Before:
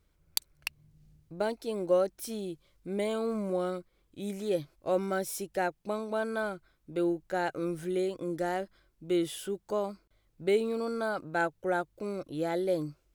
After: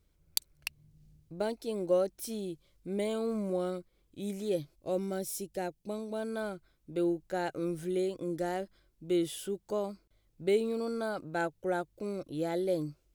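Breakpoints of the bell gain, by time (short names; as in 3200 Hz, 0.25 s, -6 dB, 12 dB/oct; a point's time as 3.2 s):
bell 1300 Hz 1.9 oct
4.39 s -5.5 dB
5.01 s -13 dB
6.12 s -13 dB
6.53 s -5.5 dB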